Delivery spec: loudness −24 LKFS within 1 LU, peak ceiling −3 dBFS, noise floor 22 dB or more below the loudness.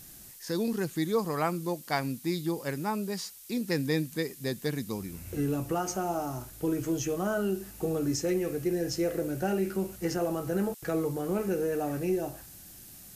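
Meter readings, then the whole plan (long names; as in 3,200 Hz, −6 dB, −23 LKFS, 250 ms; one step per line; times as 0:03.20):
background noise floor −50 dBFS; target noise floor −54 dBFS; integrated loudness −31.5 LKFS; sample peak −14.0 dBFS; target loudness −24.0 LKFS
→ noise reduction from a noise print 6 dB
level +7.5 dB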